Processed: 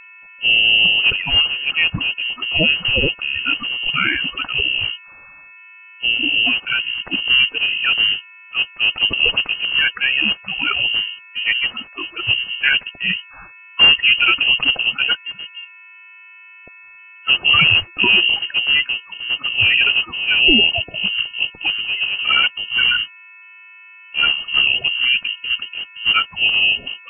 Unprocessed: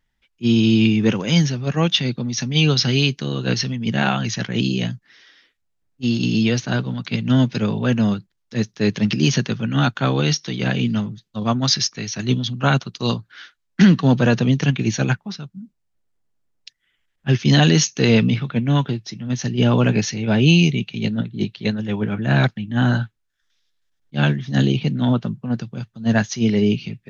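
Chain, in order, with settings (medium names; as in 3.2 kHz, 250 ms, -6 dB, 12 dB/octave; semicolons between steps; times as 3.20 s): coarse spectral quantiser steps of 30 dB; mains buzz 400 Hz, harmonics 5, -44 dBFS -7 dB/octave; frequency inversion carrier 3 kHz; trim +1.5 dB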